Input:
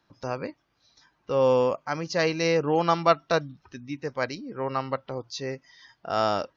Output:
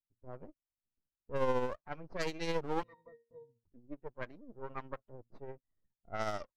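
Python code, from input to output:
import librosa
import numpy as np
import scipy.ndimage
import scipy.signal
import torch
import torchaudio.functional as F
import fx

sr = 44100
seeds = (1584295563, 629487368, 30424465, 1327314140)

y = fx.bin_expand(x, sr, power=1.5)
y = np.maximum(y, 0.0)
y = fx.octave_resonator(y, sr, note='A#', decay_s=0.31, at=(2.83, 3.64))
y = y * (1.0 - 0.43 / 2.0 + 0.43 / 2.0 * np.cos(2.0 * np.pi * 14.0 * (np.arange(len(y)) / sr)))
y = fx.env_lowpass(y, sr, base_hz=320.0, full_db=-26.0)
y = F.gain(torch.from_numpy(y), -4.0).numpy()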